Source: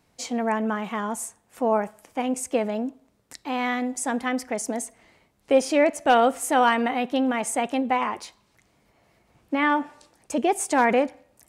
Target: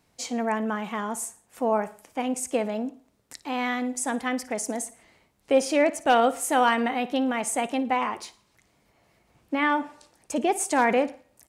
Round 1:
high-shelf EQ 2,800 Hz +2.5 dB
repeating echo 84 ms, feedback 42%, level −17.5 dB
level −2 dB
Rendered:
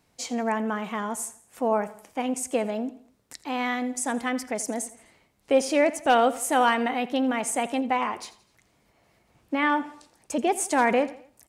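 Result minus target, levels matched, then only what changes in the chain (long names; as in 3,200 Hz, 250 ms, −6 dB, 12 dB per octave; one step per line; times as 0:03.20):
echo 28 ms late
change: repeating echo 56 ms, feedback 42%, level −17.5 dB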